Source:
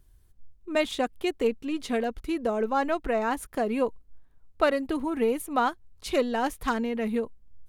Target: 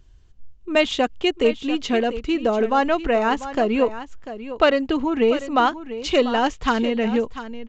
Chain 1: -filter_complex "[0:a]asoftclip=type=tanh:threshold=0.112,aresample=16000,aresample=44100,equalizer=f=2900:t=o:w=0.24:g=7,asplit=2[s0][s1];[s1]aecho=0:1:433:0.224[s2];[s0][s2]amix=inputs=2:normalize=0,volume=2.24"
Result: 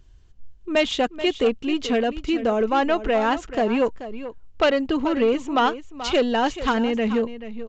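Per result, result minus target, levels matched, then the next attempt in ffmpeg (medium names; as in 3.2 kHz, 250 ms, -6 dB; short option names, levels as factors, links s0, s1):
saturation: distortion +14 dB; echo 261 ms early
-filter_complex "[0:a]asoftclip=type=tanh:threshold=0.316,aresample=16000,aresample=44100,equalizer=f=2900:t=o:w=0.24:g=7,asplit=2[s0][s1];[s1]aecho=0:1:433:0.224[s2];[s0][s2]amix=inputs=2:normalize=0,volume=2.24"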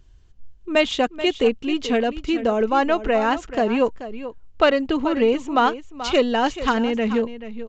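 echo 261 ms early
-filter_complex "[0:a]asoftclip=type=tanh:threshold=0.316,aresample=16000,aresample=44100,equalizer=f=2900:t=o:w=0.24:g=7,asplit=2[s0][s1];[s1]aecho=0:1:694:0.224[s2];[s0][s2]amix=inputs=2:normalize=0,volume=2.24"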